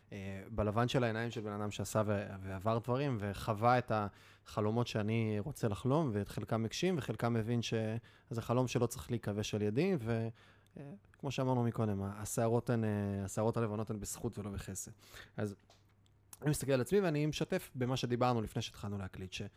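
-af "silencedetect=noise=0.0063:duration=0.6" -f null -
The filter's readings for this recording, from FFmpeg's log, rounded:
silence_start: 15.53
silence_end: 16.33 | silence_duration: 0.80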